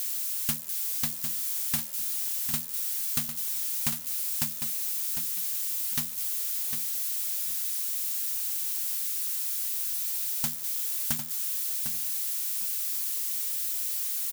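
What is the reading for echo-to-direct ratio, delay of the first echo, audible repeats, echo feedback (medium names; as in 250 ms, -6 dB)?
-8.0 dB, 752 ms, 2, 21%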